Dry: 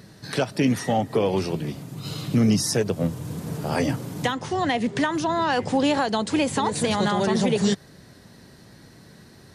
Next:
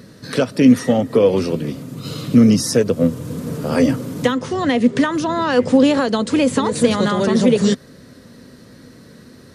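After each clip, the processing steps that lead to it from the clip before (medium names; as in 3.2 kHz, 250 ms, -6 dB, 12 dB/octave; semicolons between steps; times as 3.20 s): graphic EQ with 31 bands 250 Hz +10 dB, 500 Hz +9 dB, 800 Hz -7 dB, 1.25 kHz +4 dB; trim +3 dB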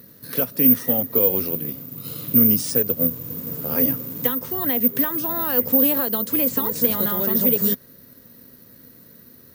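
careless resampling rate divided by 3×, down none, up zero stuff; trim -9.5 dB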